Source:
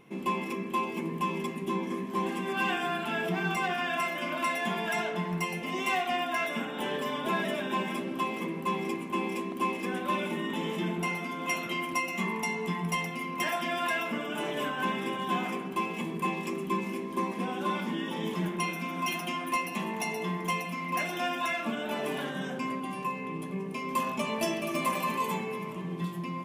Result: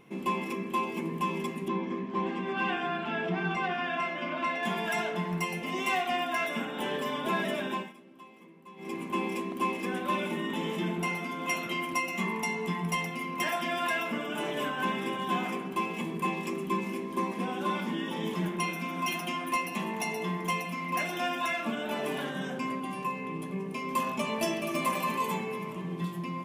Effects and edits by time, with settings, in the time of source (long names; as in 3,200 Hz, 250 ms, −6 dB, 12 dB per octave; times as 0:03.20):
0:01.68–0:04.63: high-frequency loss of the air 160 metres
0:07.67–0:09.02: duck −20 dB, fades 0.26 s